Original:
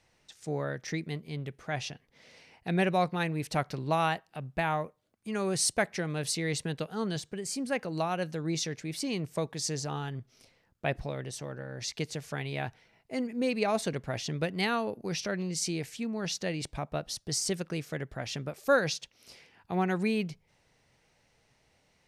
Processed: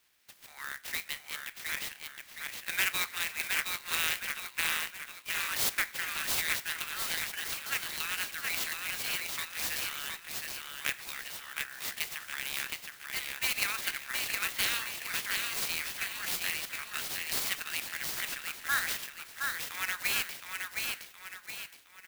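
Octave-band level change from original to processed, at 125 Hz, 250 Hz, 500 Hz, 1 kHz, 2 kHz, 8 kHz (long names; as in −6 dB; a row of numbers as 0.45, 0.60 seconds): −21.0, −21.0, −18.5, −7.0, +5.0, +1.5 decibels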